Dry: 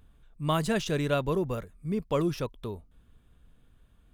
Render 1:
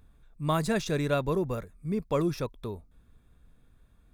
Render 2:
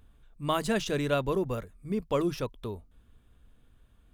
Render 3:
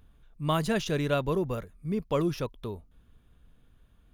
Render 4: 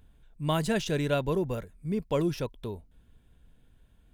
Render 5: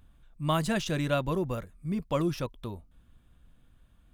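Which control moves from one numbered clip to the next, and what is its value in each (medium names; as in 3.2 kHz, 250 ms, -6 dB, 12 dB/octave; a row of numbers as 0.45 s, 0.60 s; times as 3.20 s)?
band-stop, frequency: 3 kHz, 160 Hz, 8 kHz, 1.2 kHz, 430 Hz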